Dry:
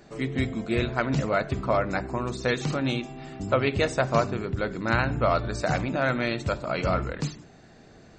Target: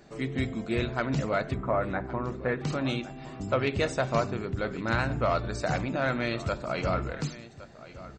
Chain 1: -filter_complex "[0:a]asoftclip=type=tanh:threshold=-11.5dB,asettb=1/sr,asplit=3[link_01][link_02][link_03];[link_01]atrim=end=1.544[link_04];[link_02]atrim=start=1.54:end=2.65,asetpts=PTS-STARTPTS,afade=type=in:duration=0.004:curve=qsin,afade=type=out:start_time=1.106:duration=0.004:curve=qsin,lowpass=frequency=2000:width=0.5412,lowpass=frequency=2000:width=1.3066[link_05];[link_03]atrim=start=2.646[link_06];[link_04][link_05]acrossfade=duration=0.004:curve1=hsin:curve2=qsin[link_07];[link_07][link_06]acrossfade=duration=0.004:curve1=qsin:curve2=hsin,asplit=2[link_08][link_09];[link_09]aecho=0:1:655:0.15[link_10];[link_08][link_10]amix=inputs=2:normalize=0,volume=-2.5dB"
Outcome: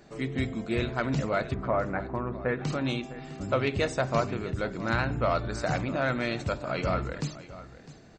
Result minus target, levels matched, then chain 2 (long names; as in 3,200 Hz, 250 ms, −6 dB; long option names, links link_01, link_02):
echo 458 ms early
-filter_complex "[0:a]asoftclip=type=tanh:threshold=-11.5dB,asettb=1/sr,asplit=3[link_01][link_02][link_03];[link_01]atrim=end=1.544[link_04];[link_02]atrim=start=1.54:end=2.65,asetpts=PTS-STARTPTS,afade=type=in:duration=0.004:curve=qsin,afade=type=out:start_time=1.106:duration=0.004:curve=qsin,lowpass=frequency=2000:width=0.5412,lowpass=frequency=2000:width=1.3066[link_05];[link_03]atrim=start=2.646[link_06];[link_04][link_05]acrossfade=duration=0.004:curve1=hsin:curve2=qsin[link_07];[link_07][link_06]acrossfade=duration=0.004:curve1=qsin:curve2=hsin,asplit=2[link_08][link_09];[link_09]aecho=0:1:1113:0.15[link_10];[link_08][link_10]amix=inputs=2:normalize=0,volume=-2.5dB"